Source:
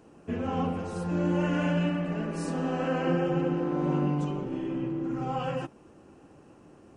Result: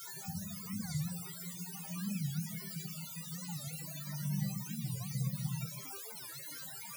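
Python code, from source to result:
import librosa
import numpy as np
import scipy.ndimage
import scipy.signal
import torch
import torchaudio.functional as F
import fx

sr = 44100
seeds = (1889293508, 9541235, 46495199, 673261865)

y = fx.over_compress(x, sr, threshold_db=-32.0, ratio=-0.5)
y = fx.high_shelf(y, sr, hz=5500.0, db=-11.5, at=(2.35, 4.56), fade=0.02)
y = fx.dereverb_blind(y, sr, rt60_s=0.99)
y = fx.brickwall_bandstop(y, sr, low_hz=210.0, high_hz=4000.0)
y = fx.echo_feedback(y, sr, ms=142, feedback_pct=23, wet_db=-7.5)
y = fx.quant_dither(y, sr, seeds[0], bits=6, dither='triangular')
y = fx.spec_topn(y, sr, count=32)
y = scipy.signal.sosfilt(scipy.signal.butter(2, 120.0, 'highpass', fs=sr, output='sos'), y)
y = fx.peak_eq(y, sr, hz=3200.0, db=-6.0, octaves=0.24)
y = fx.resonator_bank(y, sr, root=48, chord='minor', decay_s=0.22)
y = fx.record_warp(y, sr, rpm=45.0, depth_cents=250.0)
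y = y * 10.0 ** (14.5 / 20.0)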